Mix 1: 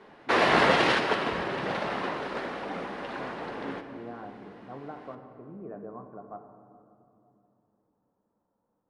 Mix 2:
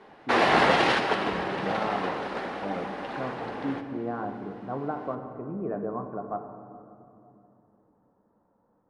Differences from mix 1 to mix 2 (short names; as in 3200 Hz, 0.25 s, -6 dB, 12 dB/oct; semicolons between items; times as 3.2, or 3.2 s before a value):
speech +9.5 dB; background: add bell 790 Hz +5.5 dB 0.21 oct